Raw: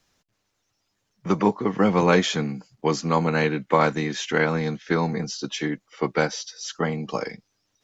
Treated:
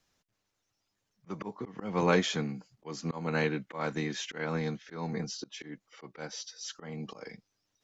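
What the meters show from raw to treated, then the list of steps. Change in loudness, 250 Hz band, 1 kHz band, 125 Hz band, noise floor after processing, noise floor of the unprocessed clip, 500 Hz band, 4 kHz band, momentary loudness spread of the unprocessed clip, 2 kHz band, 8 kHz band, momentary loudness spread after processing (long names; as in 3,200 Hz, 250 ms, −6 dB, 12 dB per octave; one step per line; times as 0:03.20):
−10.0 dB, −11.0 dB, −13.0 dB, −9.5 dB, −82 dBFS, −75 dBFS, −11.0 dB, −8.0 dB, 10 LU, −10.0 dB, can't be measured, 17 LU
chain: volume swells 236 ms
level −7 dB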